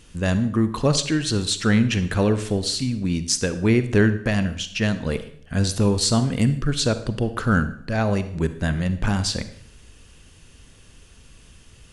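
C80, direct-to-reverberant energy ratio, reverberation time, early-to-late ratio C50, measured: 15.5 dB, 11.0 dB, 0.65 s, 12.5 dB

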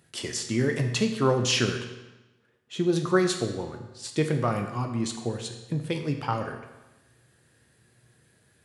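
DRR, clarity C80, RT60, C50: 4.0 dB, 9.0 dB, 1.1 s, 7.0 dB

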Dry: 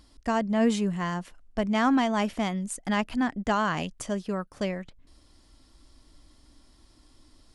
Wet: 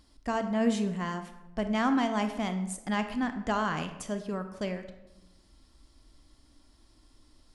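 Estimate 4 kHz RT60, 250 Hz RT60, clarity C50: 0.60 s, 1.3 s, 10.0 dB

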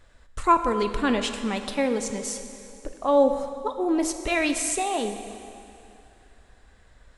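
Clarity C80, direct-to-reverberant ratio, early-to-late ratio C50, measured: 9.0 dB, 7.0 dB, 8.5 dB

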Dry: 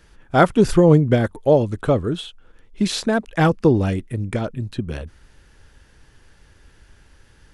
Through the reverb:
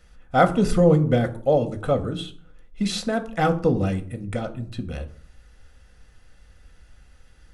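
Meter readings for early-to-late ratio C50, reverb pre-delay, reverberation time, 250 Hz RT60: 15.0 dB, 4 ms, 0.50 s, 0.65 s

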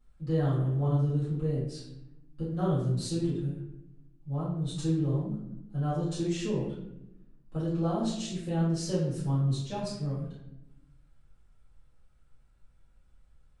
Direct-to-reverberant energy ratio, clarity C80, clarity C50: −12.0 dB, 5.0 dB, 1.5 dB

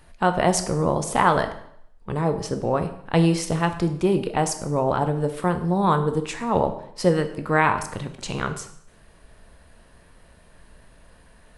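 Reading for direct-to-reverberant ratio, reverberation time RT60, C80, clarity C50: 7.5 dB, 0.70 s, 14.0 dB, 11.0 dB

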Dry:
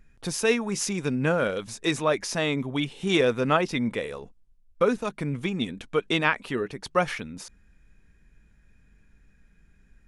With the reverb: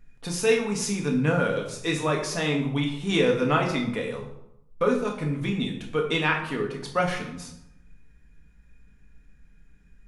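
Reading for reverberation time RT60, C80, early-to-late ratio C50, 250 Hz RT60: 0.80 s, 10.0 dB, 7.0 dB, 1.1 s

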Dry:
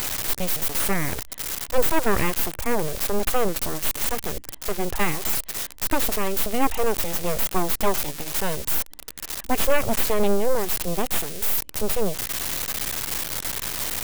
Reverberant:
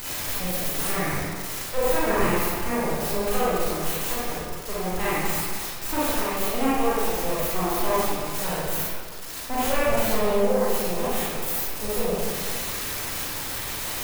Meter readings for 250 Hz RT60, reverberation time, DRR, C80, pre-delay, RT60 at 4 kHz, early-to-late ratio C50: 1.7 s, 1.8 s, −9.5 dB, −1.5 dB, 32 ms, 1.1 s, −5.0 dB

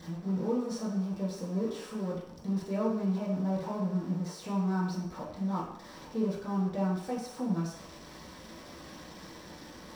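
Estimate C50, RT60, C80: 4.0 dB, 0.70 s, 6.5 dB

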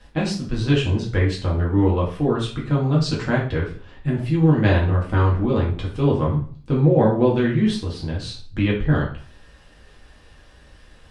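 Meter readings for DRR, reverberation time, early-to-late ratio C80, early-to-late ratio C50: −4.5 dB, 0.45 s, 12.0 dB, 6.5 dB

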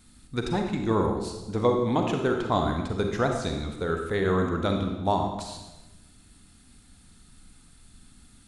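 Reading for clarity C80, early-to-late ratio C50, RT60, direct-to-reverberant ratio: 7.0 dB, 4.0 dB, 1.1 s, 3.0 dB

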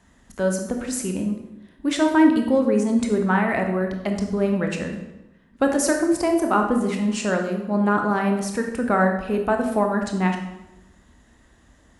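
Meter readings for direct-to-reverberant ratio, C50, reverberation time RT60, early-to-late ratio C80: 3.0 dB, 5.5 dB, 0.95 s, 8.5 dB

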